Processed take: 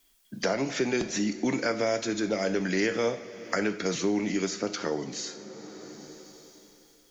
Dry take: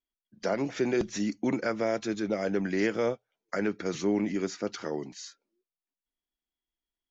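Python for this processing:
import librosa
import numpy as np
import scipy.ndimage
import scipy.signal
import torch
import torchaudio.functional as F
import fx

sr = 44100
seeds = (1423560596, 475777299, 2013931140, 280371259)

y = fx.high_shelf(x, sr, hz=2900.0, db=9.0)
y = fx.rev_double_slope(y, sr, seeds[0], early_s=0.48, late_s=3.4, knee_db=-18, drr_db=7.5)
y = fx.band_squash(y, sr, depth_pct=70)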